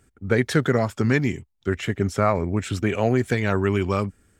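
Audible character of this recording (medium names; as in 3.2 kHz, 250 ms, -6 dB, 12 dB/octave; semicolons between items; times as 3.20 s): noise floor -63 dBFS; spectral tilt -6.0 dB/octave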